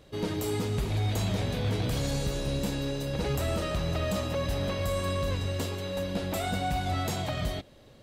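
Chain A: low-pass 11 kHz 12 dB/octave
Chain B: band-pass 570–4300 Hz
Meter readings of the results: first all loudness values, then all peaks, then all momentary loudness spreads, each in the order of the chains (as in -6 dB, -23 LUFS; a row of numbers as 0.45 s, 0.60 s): -31.0 LUFS, -36.5 LUFS; -20.0 dBFS, -22.5 dBFS; 3 LU, 5 LU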